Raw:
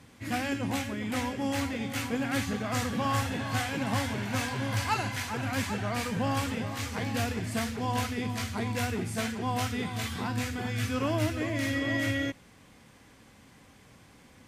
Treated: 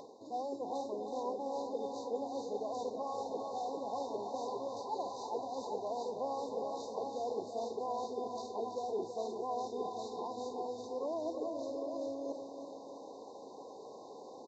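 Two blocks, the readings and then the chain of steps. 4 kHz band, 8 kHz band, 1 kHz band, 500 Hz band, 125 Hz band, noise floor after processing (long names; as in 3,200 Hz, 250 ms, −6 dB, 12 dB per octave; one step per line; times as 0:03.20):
−16.5 dB, −16.5 dB, −4.5 dB, −0.5 dB, −30.5 dB, −51 dBFS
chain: parametric band 760 Hz +6 dB 0.72 octaves
reversed playback
downward compressor 6 to 1, threshold −42 dBFS, peak gain reduction 19.5 dB
reversed playback
linear-phase brick-wall band-stop 1,100–3,600 Hz
high-shelf EQ 5,700 Hz −9.5 dB
on a send: repeating echo 326 ms, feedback 55%, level −8 dB
on the sum: downsampling to 16,000 Hz
high-pass with resonance 430 Hz, resonance Q 3.4
upward compression, threshold −52 dBFS
level +3.5 dB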